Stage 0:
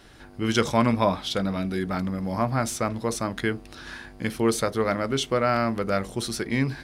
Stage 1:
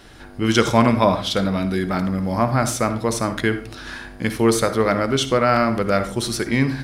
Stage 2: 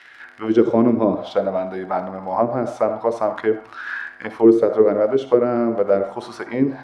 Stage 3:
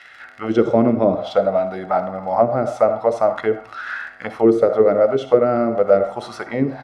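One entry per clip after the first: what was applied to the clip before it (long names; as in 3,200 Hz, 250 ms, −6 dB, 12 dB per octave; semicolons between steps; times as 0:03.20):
convolution reverb RT60 0.40 s, pre-delay 54 ms, DRR 10.5 dB; level +5.5 dB
surface crackle 54 per second −27 dBFS; envelope filter 340–2,000 Hz, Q 3.1, down, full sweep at −13 dBFS; level +9 dB
comb filter 1.5 ms, depth 44%; level +1.5 dB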